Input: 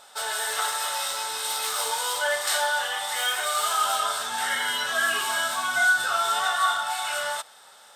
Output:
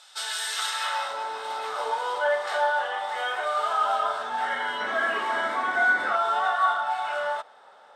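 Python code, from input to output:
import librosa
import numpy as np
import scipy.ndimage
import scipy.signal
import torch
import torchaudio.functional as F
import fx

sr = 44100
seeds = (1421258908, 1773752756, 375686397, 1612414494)

y = fx.filter_sweep_bandpass(x, sr, from_hz=4700.0, to_hz=570.0, start_s=0.64, end_s=1.16, q=0.72)
y = fx.high_shelf(y, sr, hz=6800.0, db=-8.0)
y = fx.spec_paint(y, sr, seeds[0], shape='noise', start_s=4.8, length_s=1.36, low_hz=200.0, high_hz=2300.0, level_db=-41.0)
y = y * librosa.db_to_amplitude(4.5)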